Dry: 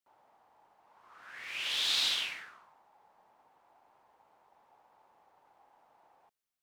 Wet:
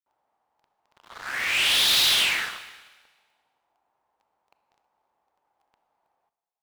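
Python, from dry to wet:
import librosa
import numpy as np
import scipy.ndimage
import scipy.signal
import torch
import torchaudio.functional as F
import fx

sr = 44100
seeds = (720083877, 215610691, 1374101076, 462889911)

p1 = fx.peak_eq(x, sr, hz=62.0, db=10.5, octaves=0.26)
p2 = fx.leveller(p1, sr, passes=5)
p3 = p2 + fx.echo_single(p2, sr, ms=319, db=-23.5, dry=0)
y = fx.rev_schroeder(p3, sr, rt60_s=1.4, comb_ms=26, drr_db=12.0)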